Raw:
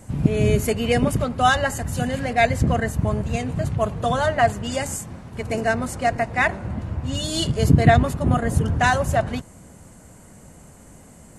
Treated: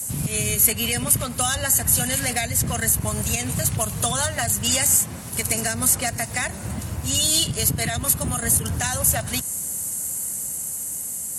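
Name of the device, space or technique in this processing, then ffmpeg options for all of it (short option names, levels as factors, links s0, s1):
FM broadcast chain: -filter_complex "[0:a]highpass=60,dynaudnorm=f=280:g=11:m=2,acrossover=split=220|780|3700[s0][s1][s2][s3];[s0]acompressor=threshold=0.1:ratio=4[s4];[s1]acompressor=threshold=0.0224:ratio=4[s5];[s2]acompressor=threshold=0.0447:ratio=4[s6];[s3]acompressor=threshold=0.00631:ratio=4[s7];[s4][s5][s6][s7]amix=inputs=4:normalize=0,aemphasis=mode=production:type=75fm,alimiter=limit=0.178:level=0:latency=1:release=109,asoftclip=type=hard:threshold=0.141,lowpass=f=15000:w=0.5412,lowpass=f=15000:w=1.3066,aemphasis=mode=production:type=75fm"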